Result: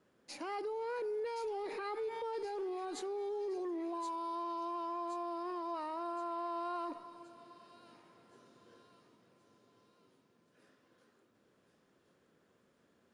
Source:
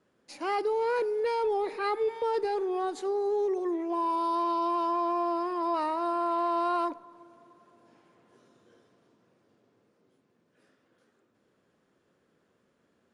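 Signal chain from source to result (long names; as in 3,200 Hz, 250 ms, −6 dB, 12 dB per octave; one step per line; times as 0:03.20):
brickwall limiter −32.5 dBFS, peak gain reduction 11 dB
on a send: delay with a high-pass on its return 1,072 ms, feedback 47%, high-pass 2,900 Hz, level −6 dB
on the sum: level −1 dB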